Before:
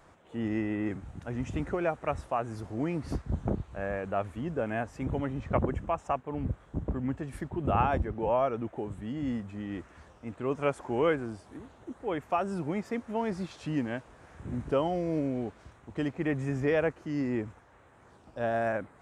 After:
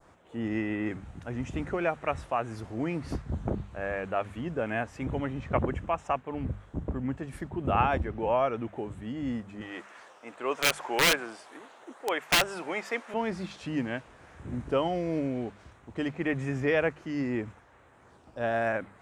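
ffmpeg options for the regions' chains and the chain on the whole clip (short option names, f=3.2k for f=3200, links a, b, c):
-filter_complex "[0:a]asettb=1/sr,asplit=3[a][b][c];[a]atrim=end=9.614[d];[b]atrim=start=9.61:end=13.14,asetpts=PTS-STARTPTS,afade=t=in:d=0.004:c=qsin,afade=t=out:st=3.526:d=0.004:c=qsin,highpass=550,acontrast=41,aeval=exprs='(mod(8.91*val(0)+1,2)-1)/8.91':c=same[e];[c]atrim=start=13.136[f];[d][e]acrossfade=d=0.004:c1=hsin:c2=qsin[g];[g][f]acrossfade=d=0.004:c1=qsin:c2=hsin,bandreject=f=50:t=h:w=6,bandreject=f=100:t=h:w=6,bandreject=f=150:t=h:w=6,bandreject=f=200:t=h:w=6,adynamicequalizer=threshold=0.00562:dfrequency=2600:dqfactor=0.72:tfrequency=2600:tqfactor=0.72:attack=5:release=100:ratio=0.375:range=3:mode=boostabove:tftype=bell"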